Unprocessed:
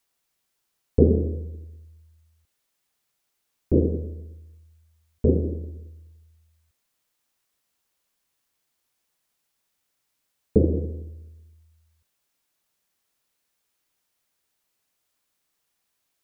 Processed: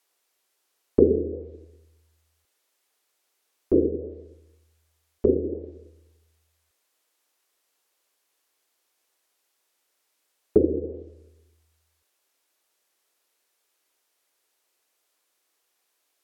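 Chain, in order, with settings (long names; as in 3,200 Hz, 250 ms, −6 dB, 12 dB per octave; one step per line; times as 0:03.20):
low shelf with overshoot 250 Hz −13 dB, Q 1.5
treble cut that deepens with the level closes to 390 Hz, closed at −22 dBFS
level +3.5 dB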